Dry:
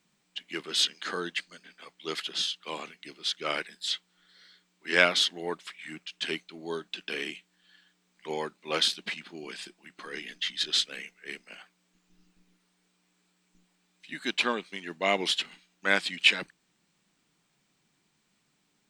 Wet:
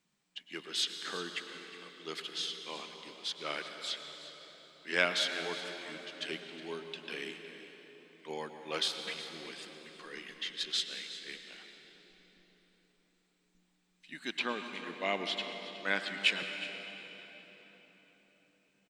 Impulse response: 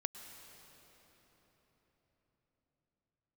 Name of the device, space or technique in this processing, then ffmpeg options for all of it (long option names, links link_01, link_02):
cave: -filter_complex "[0:a]asettb=1/sr,asplit=3[link_01][link_02][link_03];[link_01]atrim=end=14.394[link_04];[link_02]atrim=start=14.39:end=16.08,asetpts=PTS-STARTPTS,afade=type=in:duration=0.004:curve=qsin,afade=type=out:start_time=1.686:duration=0.004:curve=qsin,acrossover=split=5100[link_05][link_06];[link_06]acompressor=threshold=-50dB:ratio=4:attack=1:release=60[link_07];[link_05][link_07]amix=inputs=2:normalize=0[link_08];[link_03]atrim=start=16.076[link_09];[link_04][link_08]acrossfade=duration=0.004:curve1=hsin:curve2=qsin[link_10];[link_10][link_09]acrossfade=duration=0.004:curve1=qsin:curve2=hsin,aecho=1:1:366:0.168[link_11];[1:a]atrim=start_sample=2205[link_12];[link_11][link_12]afir=irnorm=-1:irlink=0,volume=-5.5dB"